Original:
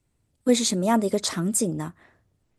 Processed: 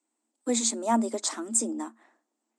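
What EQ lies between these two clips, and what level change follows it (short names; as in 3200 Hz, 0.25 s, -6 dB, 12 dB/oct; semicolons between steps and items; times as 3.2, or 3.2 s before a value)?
rippled Chebyshev high-pass 220 Hz, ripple 9 dB; synth low-pass 7700 Hz, resonance Q 3.7; 0.0 dB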